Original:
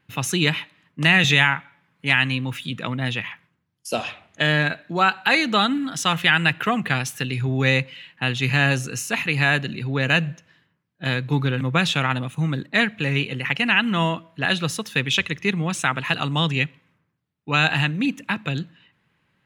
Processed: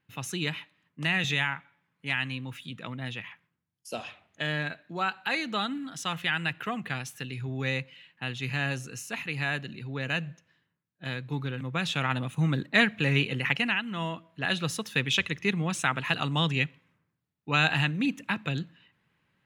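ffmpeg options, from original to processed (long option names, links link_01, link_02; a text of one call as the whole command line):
ffmpeg -i in.wav -af "volume=6.5dB,afade=type=in:start_time=11.75:duration=0.72:silence=0.375837,afade=type=out:start_time=13.47:duration=0.36:silence=0.266073,afade=type=in:start_time=13.83:duration=0.97:silence=0.354813" out.wav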